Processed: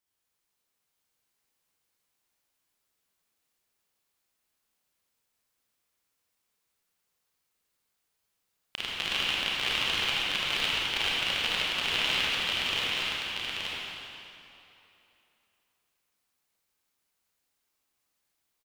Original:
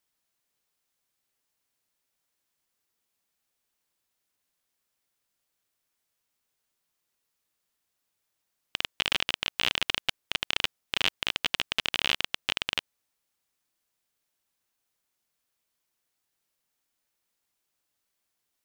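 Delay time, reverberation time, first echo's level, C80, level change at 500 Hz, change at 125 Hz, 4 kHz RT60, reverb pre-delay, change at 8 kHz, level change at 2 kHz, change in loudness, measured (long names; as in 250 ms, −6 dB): 876 ms, 2.9 s, −3.5 dB, −4.5 dB, +2.0 dB, +2.0 dB, 2.4 s, 27 ms, +1.0 dB, +2.0 dB, +1.0 dB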